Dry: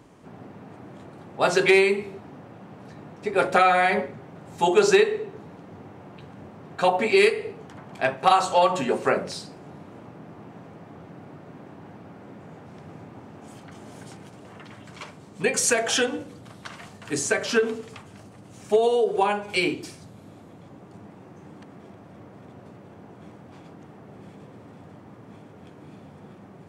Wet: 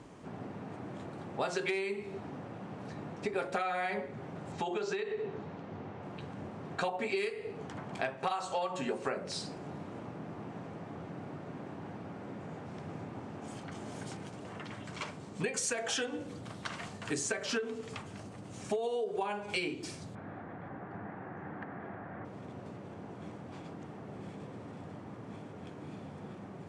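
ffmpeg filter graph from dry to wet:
ffmpeg -i in.wav -filter_complex "[0:a]asettb=1/sr,asplit=3[link_01][link_02][link_03];[link_01]atrim=end=4.524[link_04];[link_02]atrim=start=4.52:end=6.03,asetpts=PTS-STARTPTS,afade=type=in:duration=0.004:curve=qsin,afade=type=out:start_time=1.506:duration=0.004:curve=qsin,bandreject=frequency=60:width_type=h:width=6,bandreject=frequency=120:width_type=h:width=6,bandreject=frequency=180:width_type=h:width=6,bandreject=frequency=240:width_type=h:width=6,bandreject=frequency=300:width_type=h:width=6,bandreject=frequency=360:width_type=h:width=6,bandreject=frequency=420:width_type=h:width=6,bandreject=frequency=480:width_type=h:width=6,acompressor=threshold=-30dB:ratio=2.5:attack=3.2:release=140:knee=1:detection=peak,lowpass=5100[link_05];[link_03]atrim=start=6.026[link_06];[link_04][link_05]acrossfade=duration=0.004:curve1=hsin:curve2=qsin[link_07];[link_07][link_06]acrossfade=duration=0.004:curve1=qsin:curve2=hsin,asettb=1/sr,asplit=3[link_08][link_09][link_10];[link_08]atrim=end=20.154[link_11];[link_09]atrim=start=20.15:end=22.25,asetpts=PTS-STARTPTS,afade=type=in:duration=0.004:curve=qsin,afade=type=out:start_time=2.096:duration=0.004:curve=qsin,lowpass=frequency=1700:width_type=q:width=3.5,equalizer=frequency=760:width=4:gain=5.5[link_12];[link_10]atrim=start=22.246[link_13];[link_11][link_12]acrossfade=duration=0.004:curve1=hsin:curve2=qsin[link_14];[link_14][link_13]acrossfade=duration=0.004:curve1=qsin:curve2=hsin,lowpass=frequency=9700:width=0.5412,lowpass=frequency=9700:width=1.3066,acompressor=threshold=-32dB:ratio=6" out.wav

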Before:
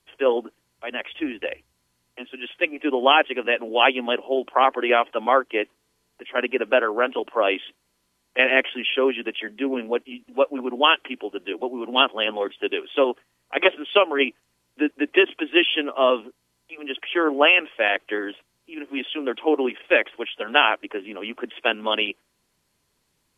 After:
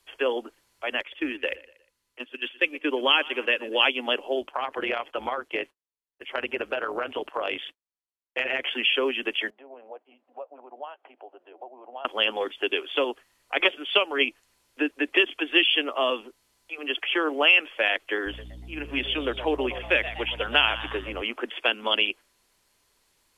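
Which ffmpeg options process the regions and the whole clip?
ffmpeg -i in.wav -filter_complex "[0:a]asettb=1/sr,asplit=3[link_01][link_02][link_03];[link_01]atrim=end=1.004[link_04];[link_02]atrim=start=1:end=3.86,asetpts=PTS-STARTPTS,afade=type=in:duration=0.004:curve=qsin,afade=type=out:start_time=2.856:duration=0.004:curve=qsin,agate=range=-10dB:threshold=-37dB:ratio=16:release=100:detection=peak,equalizer=frequency=720:width=6.1:gain=-11,aecho=1:1:119|238|357:0.0841|0.0311|0.0115,atrim=end_sample=126126[link_05];[link_03]atrim=start=3.856[link_06];[link_04][link_05]acrossfade=duration=0.004:curve1=hsin:curve2=qsin[link_07];[link_07][link_06]acrossfade=duration=0.004:curve1=qsin:curve2=hsin,asettb=1/sr,asplit=3[link_08][link_09][link_10];[link_08]atrim=end=4.414[link_11];[link_09]atrim=start=4.41:end=8.67,asetpts=PTS-STARTPTS,afade=type=in:duration=0.004:curve=qsin,afade=type=out:start_time=4.256:duration=0.004:curve=qsin,agate=range=-33dB:threshold=-43dB:ratio=3:release=100:detection=peak,tremolo=f=150:d=0.621,acompressor=threshold=-24dB:ratio=4:attack=3.2:release=140:knee=1:detection=peak[link_12];[link_10]atrim=start=8.666[link_13];[link_11][link_12]acrossfade=duration=0.004:curve1=hsin:curve2=qsin[link_14];[link_14][link_13]acrossfade=duration=0.004:curve1=qsin:curve2=hsin,asettb=1/sr,asplit=3[link_15][link_16][link_17];[link_15]atrim=end=9.504[link_18];[link_16]atrim=start=9.5:end=12.05,asetpts=PTS-STARTPTS,afade=type=in:duration=0.004:curve=qsin,afade=type=out:start_time=2.546:duration=0.004:curve=qsin,acompressor=threshold=-34dB:ratio=3:attack=3.2:release=140:knee=1:detection=peak,bandpass=frequency=710:width_type=q:width=3.6[link_19];[link_17]atrim=start=12.046[link_20];[link_18][link_19]acrossfade=duration=0.004:curve1=hsin:curve2=qsin[link_21];[link_21][link_20]acrossfade=duration=0.004:curve1=qsin:curve2=hsin,asettb=1/sr,asplit=3[link_22][link_23][link_24];[link_22]atrim=end=18.264[link_25];[link_23]atrim=start=18.26:end=21.22,asetpts=PTS-STARTPTS,afade=type=in:duration=0.004:curve=qsin,afade=type=out:start_time=2.956:duration=0.004:curve=qsin,aeval=exprs='val(0)+0.0112*(sin(2*PI*60*n/s)+sin(2*PI*2*60*n/s)/2+sin(2*PI*3*60*n/s)/3+sin(2*PI*4*60*n/s)/4+sin(2*PI*5*60*n/s)/5)':channel_layout=same,asplit=4[link_26][link_27][link_28][link_29];[link_27]adelay=120,afreqshift=130,volume=-15dB[link_30];[link_28]adelay=240,afreqshift=260,volume=-23.6dB[link_31];[link_29]adelay=360,afreqshift=390,volume=-32.3dB[link_32];[link_26][link_30][link_31][link_32]amix=inputs=4:normalize=0,atrim=end_sample=130536[link_33];[link_24]atrim=start=21.216[link_34];[link_25][link_33]acrossfade=duration=0.004:curve1=hsin:curve2=qsin[link_35];[link_35][link_34]acrossfade=duration=0.004:curve1=qsin:curve2=hsin,equalizer=frequency=150:width_type=o:width=2:gain=-11.5,acrossover=split=240|3000[link_36][link_37][link_38];[link_37]acompressor=threshold=-30dB:ratio=3[link_39];[link_36][link_39][link_38]amix=inputs=3:normalize=0,volume=4dB" out.wav

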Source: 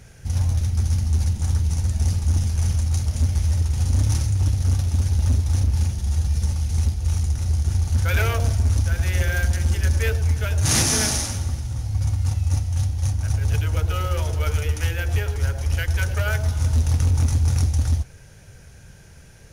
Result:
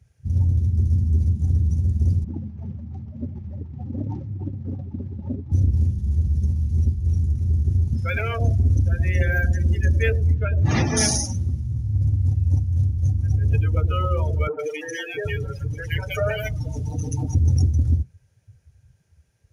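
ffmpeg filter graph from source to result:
ffmpeg -i in.wav -filter_complex "[0:a]asettb=1/sr,asplit=3[link_01][link_02][link_03];[link_01]atrim=end=2.244[link_04];[link_02]atrim=start=2.24:end=5.52,asetpts=PTS-STARTPTS,afade=type=in:duration=0.004:curve=qsin,afade=type=out:start_time=3.276:duration=0.004:curve=qsin,equalizer=frequency=510:width_type=o:width=2.8:gain=4,adynamicsmooth=sensitivity=2:basefreq=1600,highpass=200,lowpass=5500[link_05];[link_03]atrim=start=5.516[link_06];[link_04][link_05]acrossfade=duration=0.004:curve1=hsin:curve2=qsin[link_07];[link_07][link_06]acrossfade=duration=0.004:curve1=qsin:curve2=hsin,asettb=1/sr,asplit=3[link_08][link_09][link_10];[link_08]atrim=end=7.934[link_11];[link_09]atrim=start=7.93:end=8.41,asetpts=PTS-STARTPTS,afade=type=in:duration=0.004:curve=qsin,afade=type=out:start_time=0.476:duration=0.004:curve=qsin,aeval=exprs='val(0)+0.00447*sin(2*PI*5200*n/s)':channel_layout=same,acrossover=split=120|1800[link_12][link_13][link_14];[link_12]acompressor=threshold=-30dB:ratio=4[link_15];[link_13]acompressor=threshold=-28dB:ratio=4[link_16];[link_14]acompressor=threshold=-29dB:ratio=4[link_17];[link_15][link_16][link_17]amix=inputs=3:normalize=0[link_18];[link_10]atrim=start=8.406[link_19];[link_11][link_18]acrossfade=duration=0.004:curve1=hsin:curve2=qsin[link_20];[link_20][link_19]acrossfade=duration=0.004:curve1=qsin:curve2=hsin,asettb=1/sr,asplit=3[link_21][link_22][link_23];[link_21]atrim=end=10.344[link_24];[link_22]atrim=start=10.34:end=10.97,asetpts=PTS-STARTPTS,afade=type=in:duration=0.004:curve=qsin,afade=type=out:start_time=0.626:duration=0.004:curve=qsin,lowpass=3300,aeval=exprs='sgn(val(0))*max(abs(val(0))-0.00422,0)':channel_layout=same[link_25];[link_23]atrim=start=10.966[link_26];[link_24][link_25]acrossfade=duration=0.004:curve1=hsin:curve2=qsin[link_27];[link_27][link_26]acrossfade=duration=0.004:curve1=qsin:curve2=hsin,asettb=1/sr,asplit=3[link_28][link_29][link_30];[link_28]atrim=end=14.474[link_31];[link_29]atrim=start=14.47:end=17.35,asetpts=PTS-STARTPTS,afade=type=in:duration=0.004:curve=qsin,afade=type=out:start_time=2.876:duration=0.004:curve=qsin,aecho=1:1:6.6:0.91,atrim=end_sample=127008,acrossover=split=190|1600[link_32][link_33][link_34];[link_34]adelay=120[link_35];[link_32]adelay=780[link_36];[link_36][link_33][link_35]amix=inputs=3:normalize=0,atrim=end_sample=127008[link_37];[link_30]atrim=start=17.346[link_38];[link_31][link_37]acrossfade=duration=0.004:curve1=hsin:curve2=qsin[link_39];[link_39][link_38]acrossfade=duration=0.004:curve1=qsin:curve2=hsin,bandreject=frequency=1500:width=17,afftdn=noise_reduction=25:noise_floor=-27,highpass=80,volume=4dB" out.wav

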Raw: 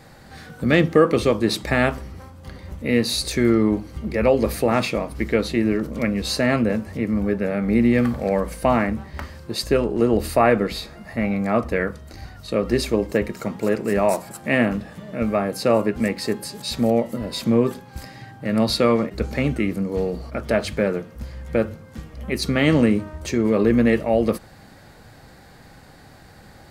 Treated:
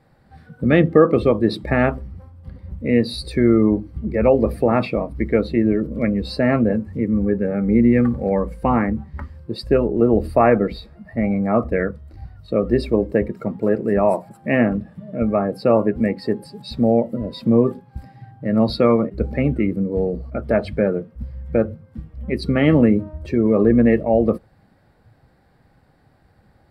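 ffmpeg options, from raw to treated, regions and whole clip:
ffmpeg -i in.wav -filter_complex "[0:a]asettb=1/sr,asplit=3[link_01][link_02][link_03];[link_01]atrim=end=6.734[link_04];[link_02]atrim=start=6.73:end=9.36,asetpts=PTS-STARTPTS,afade=type=in:duration=0.004:curve=qsin,afade=type=out:start_time=2.626:duration=0.004:curve=qsin,equalizer=frequency=6800:width_type=o:width=0.26:gain=8,bandreject=frequency=640:width=6.2[link_05];[link_03]atrim=start=9.356[link_06];[link_04][link_05]acrossfade=duration=0.004:curve1=hsin:curve2=qsin[link_07];[link_07][link_06]acrossfade=duration=0.004:curve1=qsin:curve2=hsin,equalizer=frequency=6500:width=7.3:gain=-13,afftdn=noise_reduction=13:noise_floor=-29,highshelf=frequency=2200:gain=-10,volume=3dB" out.wav

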